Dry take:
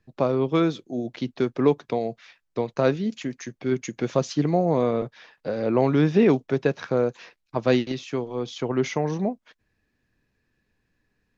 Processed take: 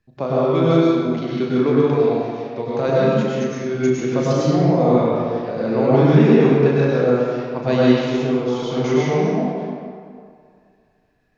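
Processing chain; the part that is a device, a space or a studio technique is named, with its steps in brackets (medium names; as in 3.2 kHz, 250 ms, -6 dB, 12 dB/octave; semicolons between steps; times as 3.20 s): tunnel (flutter echo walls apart 6.2 m, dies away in 0.27 s; reverberation RT60 2.2 s, pre-delay 93 ms, DRR -7.5 dB); trim -2.5 dB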